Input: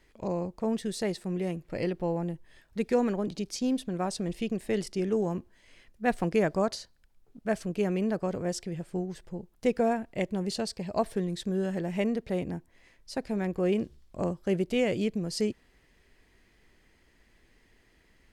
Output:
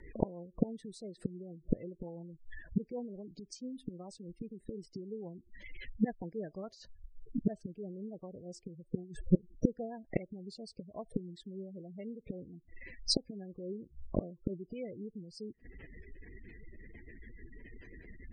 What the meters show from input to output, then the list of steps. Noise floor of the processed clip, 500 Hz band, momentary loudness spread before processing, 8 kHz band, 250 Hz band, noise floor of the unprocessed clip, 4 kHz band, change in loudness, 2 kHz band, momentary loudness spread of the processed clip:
-67 dBFS, -12.5 dB, 9 LU, -8.5 dB, -7.5 dB, -65 dBFS, -3.0 dB, -9.0 dB, -14.5 dB, 20 LU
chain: inverted gate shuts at -28 dBFS, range -29 dB; spectral gate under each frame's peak -15 dB strong; rotary cabinet horn 7 Hz; trim +15.5 dB

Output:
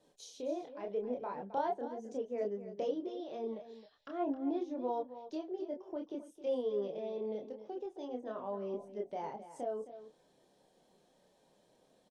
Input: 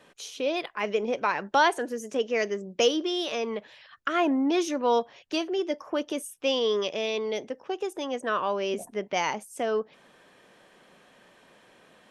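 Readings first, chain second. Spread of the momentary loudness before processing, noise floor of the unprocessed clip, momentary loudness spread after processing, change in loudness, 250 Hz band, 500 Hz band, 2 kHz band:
9 LU, -58 dBFS, 9 LU, -11.5 dB, -10.0 dB, -10.0 dB, -26.5 dB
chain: low-pass that closes with the level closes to 1.7 kHz, closed at -26 dBFS; high-order bell 1.8 kHz -13 dB; chorus voices 6, 0.3 Hz, delay 28 ms, depth 4 ms; delay 265 ms -13 dB; trim -7 dB

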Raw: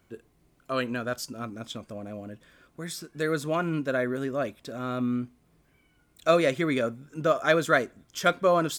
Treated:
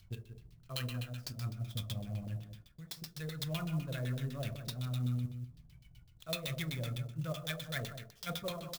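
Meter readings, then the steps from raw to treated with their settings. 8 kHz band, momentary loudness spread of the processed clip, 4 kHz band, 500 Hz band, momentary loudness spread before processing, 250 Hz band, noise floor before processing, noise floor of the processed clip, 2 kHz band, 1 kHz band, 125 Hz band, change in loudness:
-8.5 dB, 11 LU, -5.0 dB, -20.0 dB, 16 LU, -12.5 dB, -66 dBFS, -62 dBFS, -15.5 dB, -20.0 dB, +0.5 dB, -12.0 dB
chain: FFT filter 130 Hz 0 dB, 290 Hz -26 dB, 1.5 kHz -25 dB, 5.5 kHz +8 dB; reverse; compression 12:1, threshold -45 dBFS, peak gain reduction 20.5 dB; reverse; transient shaper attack +3 dB, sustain -10 dB; on a send: delay 184 ms -9.5 dB; on the sum: Schroeder reverb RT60 0.49 s, combs from 25 ms, DRR 4 dB; LFO low-pass saw down 7.9 Hz 490–4300 Hz; sampling jitter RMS 0.025 ms; trim +9.5 dB

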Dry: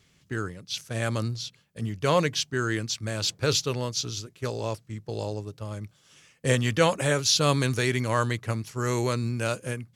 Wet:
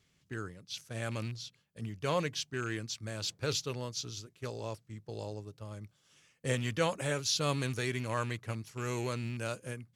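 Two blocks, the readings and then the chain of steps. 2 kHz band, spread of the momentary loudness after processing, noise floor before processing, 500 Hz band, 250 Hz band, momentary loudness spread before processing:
-8.5 dB, 13 LU, -63 dBFS, -9.0 dB, -9.0 dB, 13 LU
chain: rattle on loud lows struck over -26 dBFS, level -28 dBFS; trim -9 dB

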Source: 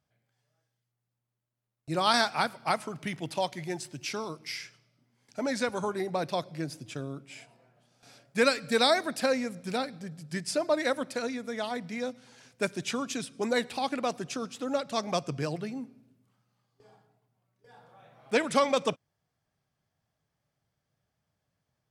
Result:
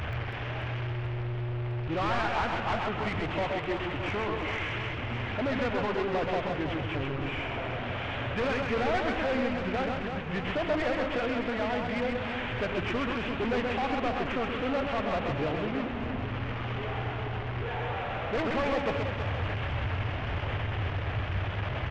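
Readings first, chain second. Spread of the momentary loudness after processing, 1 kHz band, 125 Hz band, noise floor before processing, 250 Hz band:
5 LU, +1.5 dB, +11.0 dB, -84 dBFS, +2.0 dB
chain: one-bit delta coder 16 kbps, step -34 dBFS; resonant low shelf 120 Hz +6.5 dB, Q 3; saturation -32 dBFS, distortion -7 dB; on a send: reverse bouncing-ball echo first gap 130 ms, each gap 1.5×, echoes 5; on the sum: trim +5.5 dB

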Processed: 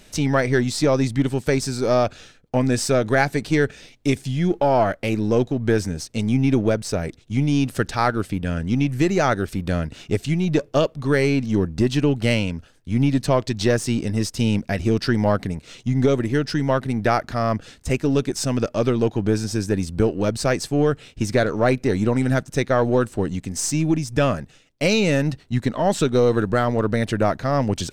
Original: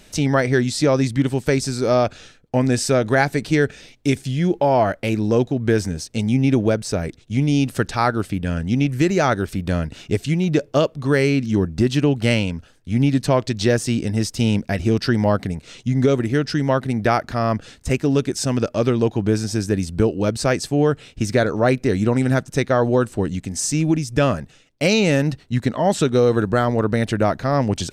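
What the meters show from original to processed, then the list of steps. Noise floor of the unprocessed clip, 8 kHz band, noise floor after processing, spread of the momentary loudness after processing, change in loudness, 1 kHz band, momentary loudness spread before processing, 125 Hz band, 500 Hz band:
-51 dBFS, -1.5 dB, -52 dBFS, 6 LU, -1.5 dB, -1.0 dB, 6 LU, -2.0 dB, -1.5 dB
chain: partial rectifier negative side -3 dB

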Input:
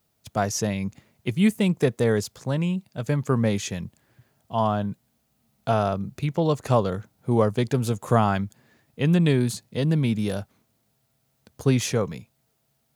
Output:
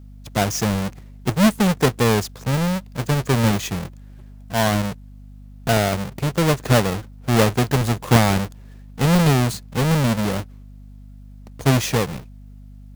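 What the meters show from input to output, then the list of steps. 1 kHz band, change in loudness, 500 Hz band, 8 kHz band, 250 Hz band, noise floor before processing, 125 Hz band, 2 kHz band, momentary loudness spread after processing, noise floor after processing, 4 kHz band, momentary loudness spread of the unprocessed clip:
+4.5 dB, +4.5 dB, +2.5 dB, +7.0 dB, +3.5 dB, -71 dBFS, +4.5 dB, +8.5 dB, 12 LU, -41 dBFS, +9.0 dB, 11 LU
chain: square wave that keeps the level; hum 50 Hz, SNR 20 dB

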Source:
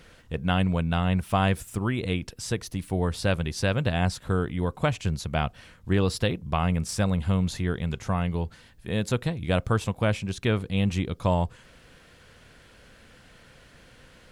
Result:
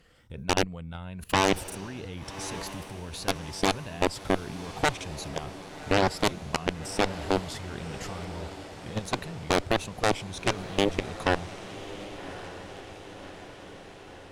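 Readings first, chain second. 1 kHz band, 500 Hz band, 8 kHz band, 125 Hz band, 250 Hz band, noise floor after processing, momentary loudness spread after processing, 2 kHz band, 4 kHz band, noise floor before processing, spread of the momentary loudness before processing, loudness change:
+1.0 dB, -0.5 dB, +2.5 dB, -10.5 dB, -5.0 dB, -46 dBFS, 17 LU, +1.0 dB, +2.5 dB, -54 dBFS, 7 LU, -3.0 dB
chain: drifting ripple filter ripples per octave 1.5, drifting +1.5 Hz, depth 8 dB; level held to a coarse grid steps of 22 dB; Chebyshev shaper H 7 -7 dB, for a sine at -9.5 dBFS; on a send: echo that smears into a reverb 1134 ms, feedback 62%, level -13 dB; on the sum: trim -1 dB

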